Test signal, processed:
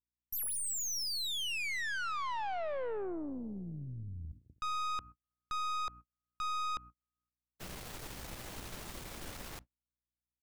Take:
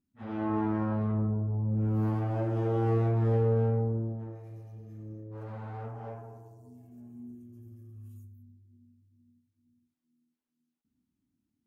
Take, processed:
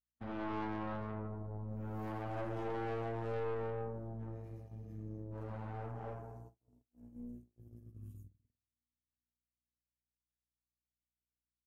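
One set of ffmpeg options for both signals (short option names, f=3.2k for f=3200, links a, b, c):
-filter_complex "[0:a]asplit=2[a][b];[b]adelay=250,lowpass=f=1.1k:p=1,volume=-21dB,asplit=2[c][d];[d]adelay=250,lowpass=f=1.1k:p=1,volume=0.55,asplit=2[e][f];[f]adelay=250,lowpass=f=1.1k:p=1,volume=0.55,asplit=2[g][h];[h]adelay=250,lowpass=f=1.1k:p=1,volume=0.55[i];[a][c][e][g][i]amix=inputs=5:normalize=0,acrossover=split=420[j][k];[j]acompressor=threshold=-38dB:ratio=20[l];[l][k]amix=inputs=2:normalize=0,aeval=exprs='val(0)+0.002*(sin(2*PI*60*n/s)+sin(2*PI*2*60*n/s)/2+sin(2*PI*3*60*n/s)/3+sin(2*PI*4*60*n/s)/4+sin(2*PI*5*60*n/s)/5)':c=same,aeval=exprs='(tanh(56.2*val(0)+0.6)-tanh(0.6))/56.2':c=same,agate=range=-42dB:threshold=-49dB:ratio=16:detection=peak"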